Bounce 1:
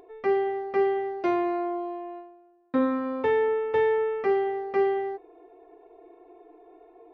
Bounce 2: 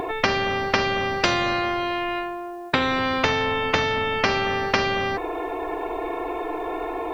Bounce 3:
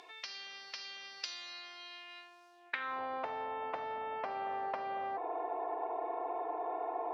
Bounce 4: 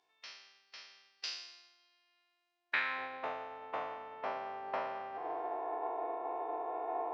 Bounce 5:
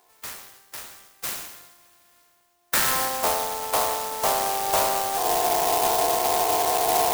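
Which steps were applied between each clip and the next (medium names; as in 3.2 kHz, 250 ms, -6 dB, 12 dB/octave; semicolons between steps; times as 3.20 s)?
in parallel at +2 dB: compression, threshold -30 dBFS, peak gain reduction 10.5 dB; on the sum: spectrum-flattening compressor 4:1; trim +6.5 dB
compression, threshold -25 dBFS, peak gain reduction 9.5 dB; band-pass sweep 4.9 kHz -> 760 Hz, 2.49–3.02 s; trim -3.5 dB
spectral sustain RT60 1.98 s; upward expansion 2.5:1, over -49 dBFS; trim +2.5 dB
overdrive pedal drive 18 dB, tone 1.5 kHz, clips at -18.5 dBFS; sampling jitter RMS 0.12 ms; trim +9 dB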